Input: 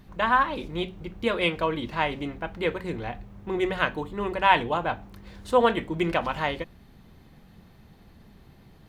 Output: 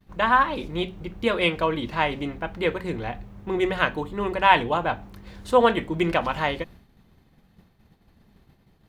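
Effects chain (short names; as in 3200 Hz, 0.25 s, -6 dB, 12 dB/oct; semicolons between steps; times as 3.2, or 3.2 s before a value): expander -44 dBFS; gain +2.5 dB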